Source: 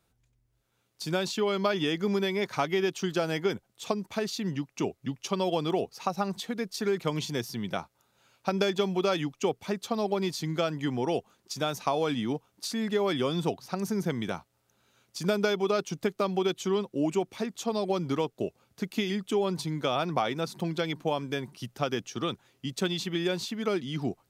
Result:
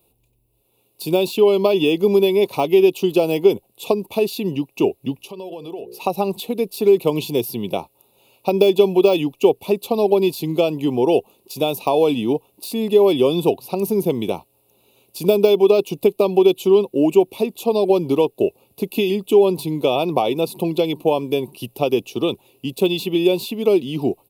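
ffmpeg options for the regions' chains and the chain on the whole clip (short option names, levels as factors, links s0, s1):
-filter_complex "[0:a]asettb=1/sr,asplit=3[s0][s1][s2];[s0]atrim=end=5.154[s3];[s1]atrim=start=5.15:end=6,asetpts=PTS-STARTPTS,afade=t=in:d=0.004:c=qsin,afade=t=out:st=0.846:d=0.004:c=qsin,bandreject=f=60:t=h:w=6,bandreject=f=120:t=h:w=6,bandreject=f=180:t=h:w=6,bandreject=f=240:t=h:w=6,bandreject=f=300:t=h:w=6,bandreject=f=360:t=h:w=6,bandreject=f=420:t=h:w=6,bandreject=f=480:t=h:w=6,bandreject=f=540:t=h:w=6,acompressor=threshold=0.00708:ratio=4:attack=3.2:release=140:knee=1:detection=peak[s4];[s2]atrim=start=5.996[s5];[s3][s4]acrossfade=d=0.004:c1=hsin:c2=qsin[s6];[s6][s5]acrossfade=d=0.004:c1=qsin:c2=hsin,bandreject=f=3200:w=10,deesser=0.8,firequalizer=gain_entry='entry(180,0);entry(390,10);entry(670,4);entry(980,3);entry(1600,-25);entry(2600,8);entry(6000,-7);entry(11000,14)':delay=0.05:min_phase=1,volume=1.88"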